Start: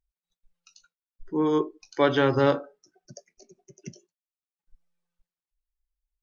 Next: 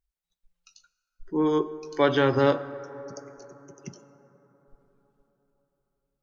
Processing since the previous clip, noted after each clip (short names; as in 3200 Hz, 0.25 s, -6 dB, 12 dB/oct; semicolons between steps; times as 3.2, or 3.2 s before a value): plate-style reverb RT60 4.4 s, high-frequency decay 0.3×, DRR 14.5 dB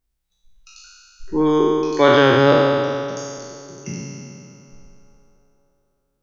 spectral trails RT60 2.35 s; gain +5.5 dB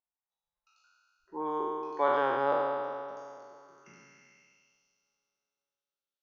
band-pass sweep 880 Hz -> 3500 Hz, 3.53–4.86; gain -6.5 dB